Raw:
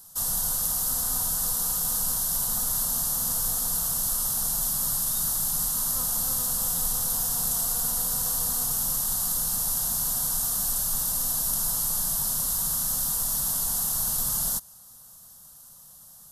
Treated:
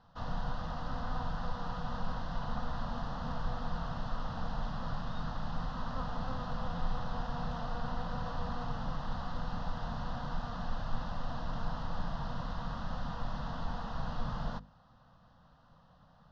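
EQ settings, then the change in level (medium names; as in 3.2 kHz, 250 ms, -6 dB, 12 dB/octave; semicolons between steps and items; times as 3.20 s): Gaussian low-pass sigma 2.4 samples; distance through air 260 m; hum notches 50/100/150/200/250/300/350/400/450/500 Hz; +3.0 dB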